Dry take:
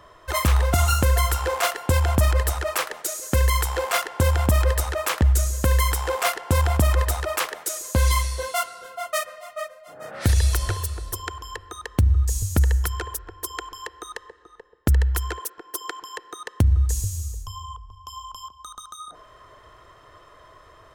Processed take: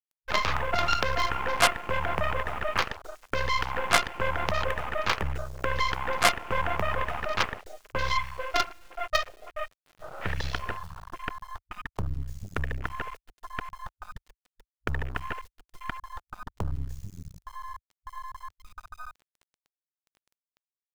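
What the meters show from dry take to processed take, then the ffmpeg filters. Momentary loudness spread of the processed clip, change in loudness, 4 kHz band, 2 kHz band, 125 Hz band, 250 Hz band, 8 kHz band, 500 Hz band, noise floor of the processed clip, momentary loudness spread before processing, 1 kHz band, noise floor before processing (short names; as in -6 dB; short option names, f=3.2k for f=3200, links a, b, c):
19 LU, -6.5 dB, -1.5 dB, 0.0 dB, -15.5 dB, -10.0 dB, -11.5 dB, -4.5 dB, under -85 dBFS, 18 LU, -1.0 dB, -51 dBFS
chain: -filter_complex "[0:a]acrossover=split=570 5000:gain=0.2 1 0.126[a][b][c];[a][b][c]amix=inputs=3:normalize=0,acrossover=split=180[d][e];[d]aeval=exprs='max(val(0),0)':c=same[f];[e]highshelf=f=7.4k:g=-9.5[g];[f][g]amix=inputs=2:normalize=0,acrusher=bits=4:dc=4:mix=0:aa=0.000001,afwtdn=0.01,volume=4dB"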